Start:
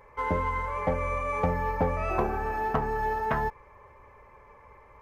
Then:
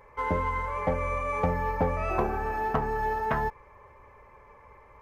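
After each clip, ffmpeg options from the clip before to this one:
ffmpeg -i in.wav -af anull out.wav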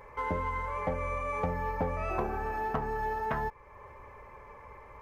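ffmpeg -i in.wav -af "acompressor=threshold=-47dB:ratio=1.5,volume=3.5dB" out.wav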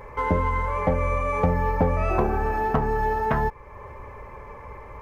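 ffmpeg -i in.wav -af "lowshelf=frequency=470:gain=6,volume=6.5dB" out.wav

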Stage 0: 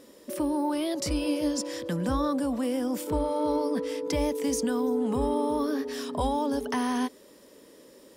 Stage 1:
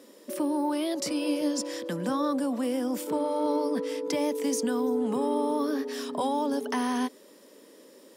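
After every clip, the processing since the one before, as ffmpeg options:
ffmpeg -i in.wav -af "highpass=frequency=190:width=0.5412,highpass=frequency=190:width=1.3066" out.wav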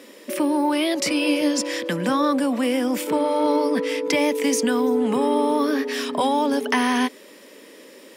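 ffmpeg -i in.wav -af "equalizer=frequency=2300:width=1.3:gain=10,volume=6.5dB" out.wav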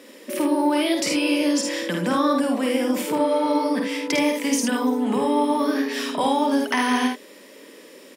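ffmpeg -i in.wav -af "aecho=1:1:51|76:0.631|0.473,volume=-2dB" out.wav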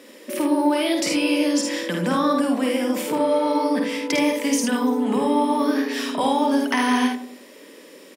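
ffmpeg -i in.wav -filter_complex "[0:a]asplit=2[link_01][link_02];[link_02]adelay=93,lowpass=frequency=820:poles=1,volume=-9dB,asplit=2[link_03][link_04];[link_04]adelay=93,lowpass=frequency=820:poles=1,volume=0.46,asplit=2[link_05][link_06];[link_06]adelay=93,lowpass=frequency=820:poles=1,volume=0.46,asplit=2[link_07][link_08];[link_08]adelay=93,lowpass=frequency=820:poles=1,volume=0.46,asplit=2[link_09][link_10];[link_10]adelay=93,lowpass=frequency=820:poles=1,volume=0.46[link_11];[link_01][link_03][link_05][link_07][link_09][link_11]amix=inputs=6:normalize=0" out.wav

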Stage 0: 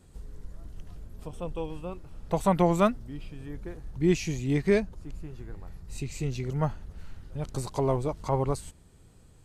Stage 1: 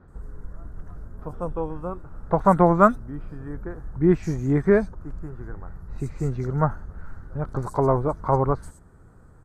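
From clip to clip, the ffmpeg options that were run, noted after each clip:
ffmpeg -i in.wav -filter_complex "[0:a]highshelf=frequency=2000:width_type=q:width=3:gain=-11.5,acrossover=split=4200[link_01][link_02];[link_02]adelay=80[link_03];[link_01][link_03]amix=inputs=2:normalize=0,volume=5dB" out.wav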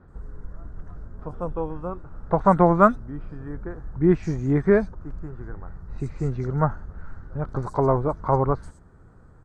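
ffmpeg -i in.wav -af "lowpass=6000" out.wav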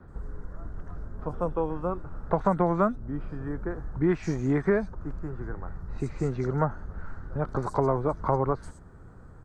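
ffmpeg -i in.wav -filter_complex "[0:a]acrossover=split=220|690|1400[link_01][link_02][link_03][link_04];[link_01]acompressor=threshold=-34dB:ratio=4[link_05];[link_02]acompressor=threshold=-28dB:ratio=4[link_06];[link_03]acompressor=threshold=-36dB:ratio=4[link_07];[link_04]acompressor=threshold=-41dB:ratio=4[link_08];[link_05][link_06][link_07][link_08]amix=inputs=4:normalize=0,volume=2.5dB" out.wav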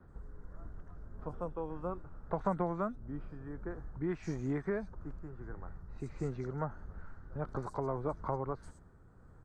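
ffmpeg -i in.wav -af "tremolo=f=1.6:d=0.3,volume=-8.5dB" out.wav

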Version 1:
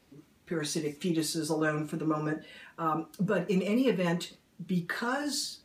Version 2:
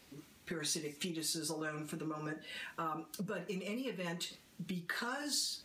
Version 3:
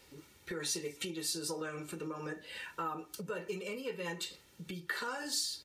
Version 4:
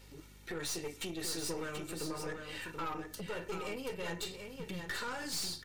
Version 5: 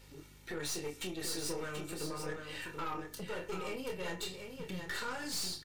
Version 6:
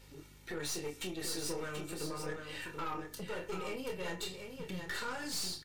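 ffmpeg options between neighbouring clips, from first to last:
ffmpeg -i in.wav -af "acompressor=threshold=-39dB:ratio=6,tiltshelf=frequency=1400:gain=-4,volume=3.5dB" out.wav
ffmpeg -i in.wav -af "aecho=1:1:2.2:0.55" out.wav
ffmpeg -i in.wav -filter_complex "[0:a]aeval=exprs='val(0)+0.00141*(sin(2*PI*50*n/s)+sin(2*PI*2*50*n/s)/2+sin(2*PI*3*50*n/s)/3+sin(2*PI*4*50*n/s)/4+sin(2*PI*5*50*n/s)/5)':channel_layout=same,aeval=exprs='(tanh(70.8*val(0)+0.55)-tanh(0.55))/70.8':channel_layout=same,asplit=2[link_01][link_02];[link_02]aecho=0:1:732:0.473[link_03];[link_01][link_03]amix=inputs=2:normalize=0,volume=3dB" out.wav
ffmpeg -i in.wav -filter_complex "[0:a]asplit=2[link_01][link_02];[link_02]adelay=27,volume=-7dB[link_03];[link_01][link_03]amix=inputs=2:normalize=0,volume=-1dB" out.wav
ffmpeg -i in.wav -ar 48000 -c:a libvorbis -b:a 128k out.ogg

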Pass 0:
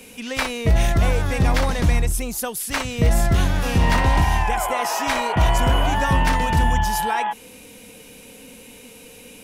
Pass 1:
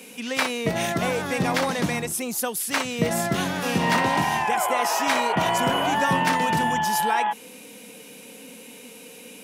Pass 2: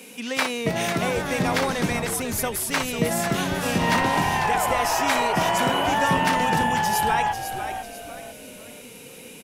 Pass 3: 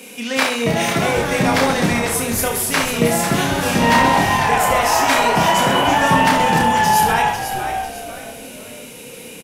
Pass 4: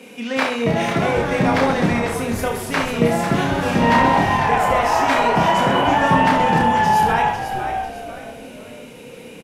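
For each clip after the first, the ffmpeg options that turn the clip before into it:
ffmpeg -i in.wav -af "highpass=frequency=160:width=0.5412,highpass=frequency=160:width=1.3066" out.wav
ffmpeg -i in.wav -filter_complex "[0:a]asplit=5[link_01][link_02][link_03][link_04][link_05];[link_02]adelay=497,afreqshift=-82,volume=-8.5dB[link_06];[link_03]adelay=994,afreqshift=-164,volume=-17.1dB[link_07];[link_04]adelay=1491,afreqshift=-246,volume=-25.8dB[link_08];[link_05]adelay=1988,afreqshift=-328,volume=-34.4dB[link_09];[link_01][link_06][link_07][link_08][link_09]amix=inputs=5:normalize=0" out.wav
ffmpeg -i in.wav -af "aecho=1:1:30|72|130.8|213.1|328.4:0.631|0.398|0.251|0.158|0.1,volume=4.5dB" out.wav
ffmpeg -i in.wav -af "lowpass=frequency=1900:poles=1" out.wav

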